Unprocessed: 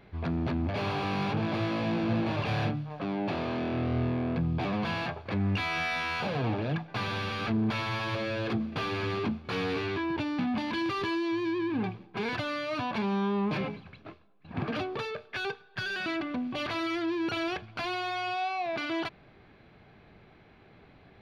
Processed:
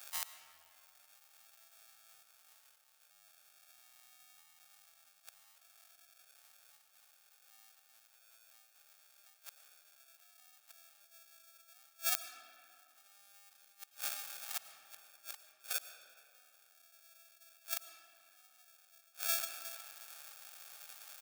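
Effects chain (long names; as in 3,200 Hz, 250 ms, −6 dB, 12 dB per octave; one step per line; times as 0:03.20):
0:02.22–0:03.11: lower of the sound and its delayed copy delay 2.3 ms
repeating echo 361 ms, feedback 20%, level −6 dB
gate with flip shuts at −27 dBFS, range −37 dB
sample-rate reduction 1,000 Hz, jitter 0%
low shelf with overshoot 530 Hz −13.5 dB, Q 1.5
0:14.85–0:15.38: compressor whose output falls as the input rises −52 dBFS, ratio −0.5
first difference
convolution reverb RT60 2.5 s, pre-delay 65 ms, DRR 10.5 dB
level +15.5 dB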